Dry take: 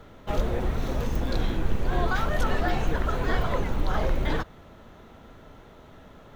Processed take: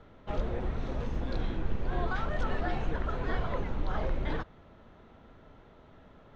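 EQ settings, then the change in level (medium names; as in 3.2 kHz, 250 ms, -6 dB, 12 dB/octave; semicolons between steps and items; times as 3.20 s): distance through air 140 m; -6.0 dB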